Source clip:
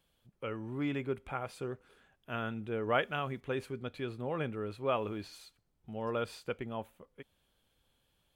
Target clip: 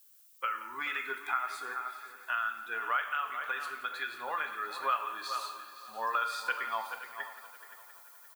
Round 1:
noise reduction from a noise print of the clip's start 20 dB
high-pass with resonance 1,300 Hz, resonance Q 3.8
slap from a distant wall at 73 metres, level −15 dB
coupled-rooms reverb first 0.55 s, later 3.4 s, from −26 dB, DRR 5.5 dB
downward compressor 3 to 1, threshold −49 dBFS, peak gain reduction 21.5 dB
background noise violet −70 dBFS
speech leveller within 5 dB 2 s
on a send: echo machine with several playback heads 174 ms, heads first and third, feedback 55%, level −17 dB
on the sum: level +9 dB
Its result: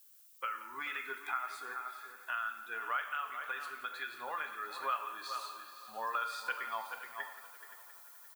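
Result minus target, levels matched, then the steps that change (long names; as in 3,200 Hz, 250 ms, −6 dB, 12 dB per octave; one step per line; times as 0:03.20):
downward compressor: peak gain reduction +4.5 dB
change: downward compressor 3 to 1, threshold −42.5 dBFS, peak gain reduction 17 dB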